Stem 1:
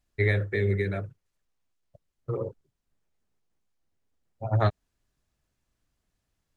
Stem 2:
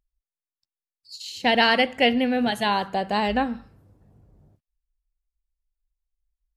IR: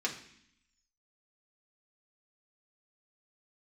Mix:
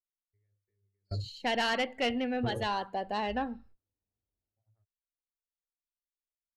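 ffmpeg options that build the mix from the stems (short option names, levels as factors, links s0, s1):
-filter_complex "[0:a]acompressor=threshold=0.0178:ratio=2.5,aemphasis=mode=reproduction:type=riaa,adelay=150,volume=0.668[s0];[1:a]agate=range=0.178:threshold=0.00398:ratio=16:detection=peak,volume=0.422,asplit=2[s1][s2];[s2]apad=whole_len=296007[s3];[s0][s3]sidechaingate=range=0.0112:threshold=0.00126:ratio=16:detection=peak[s4];[s4][s1]amix=inputs=2:normalize=0,afftdn=nr=12:nf=-43,equalizer=f=150:w=2.8:g=-14,asoftclip=type=tanh:threshold=0.0794"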